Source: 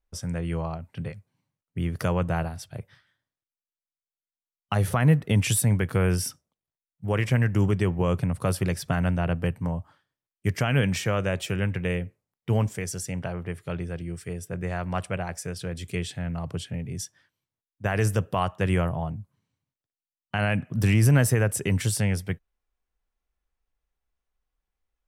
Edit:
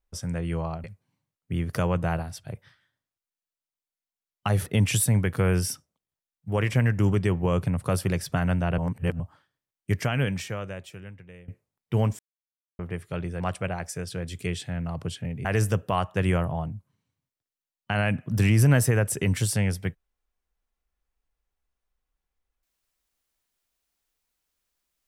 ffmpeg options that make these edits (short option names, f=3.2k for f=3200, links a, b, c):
-filter_complex "[0:a]asplit=10[a][b][c][d][e][f][g][h][i][j];[a]atrim=end=0.842[k];[b]atrim=start=1.098:end=4.922[l];[c]atrim=start=5.218:end=9.342[m];[d]atrim=start=9.338:end=9.762,asetpts=PTS-STARTPTS,areverse[n];[e]atrim=start=9.758:end=12.04,asetpts=PTS-STARTPTS,afade=t=out:st=0.752:d=1.53:c=qua:silence=0.0891251[o];[f]atrim=start=12.04:end=12.75,asetpts=PTS-STARTPTS,afade=t=in:d=0.004:c=hsin:silence=0.0891251,afade=t=out:st=0.706:d=0.004:c=hsin[p];[g]atrim=start=12.75:end=13.35,asetpts=PTS-STARTPTS,volume=0[q];[h]atrim=start=13.35:end=13.962,asetpts=PTS-STARTPTS,afade=t=in:d=0.004:c=hsin[r];[i]atrim=start=14.888:end=16.942[s];[j]atrim=start=17.888[t];[k][l]acrossfade=d=0.004:c1=hsin:c2=hsin[u];[u][m]acrossfade=d=0.004:c1=hsin:c2=hsin[v];[v][n]acrossfade=d=0.004:c1=hsin:c2=hsin[w];[o][p][q][r]concat=n=4:v=0:a=1[x];[w][x]acrossfade=d=0.004:c1=hsin:c2=hsin[y];[y][s]acrossfade=d=0.004:c1=hsin:c2=hsin[z];[z][t]acrossfade=d=0.004:c1=hsin:c2=hsin"